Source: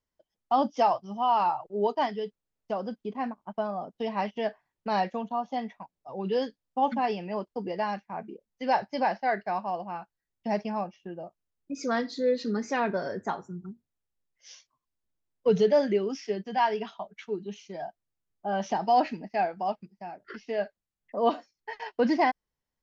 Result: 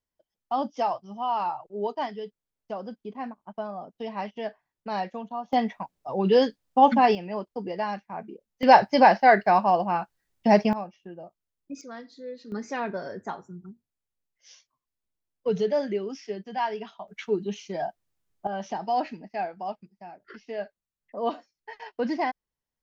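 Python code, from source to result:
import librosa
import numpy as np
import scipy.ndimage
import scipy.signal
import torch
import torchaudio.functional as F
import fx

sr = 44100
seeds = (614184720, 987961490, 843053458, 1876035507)

y = fx.gain(x, sr, db=fx.steps((0.0, -3.0), (5.53, 8.5), (7.15, 0.5), (8.63, 10.5), (10.73, -2.5), (11.81, -13.0), (12.52, -3.0), (17.08, 6.5), (18.47, -3.5)))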